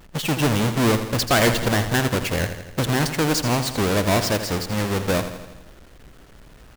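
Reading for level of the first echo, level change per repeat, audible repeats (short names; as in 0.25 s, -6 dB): -10.5 dB, -4.5 dB, 6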